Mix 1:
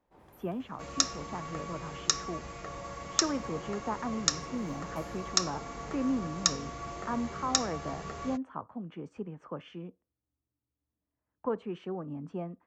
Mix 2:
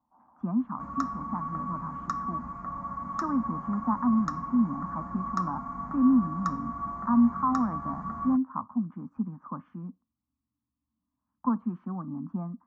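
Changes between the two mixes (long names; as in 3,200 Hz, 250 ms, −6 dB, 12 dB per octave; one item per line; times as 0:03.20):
first sound: add resonant band-pass 750 Hz, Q 2.1
master: add drawn EQ curve 140 Hz 0 dB, 240 Hz +14 dB, 420 Hz −19 dB, 1,100 Hz +10 dB, 2,900 Hz −28 dB, 4,400 Hz −25 dB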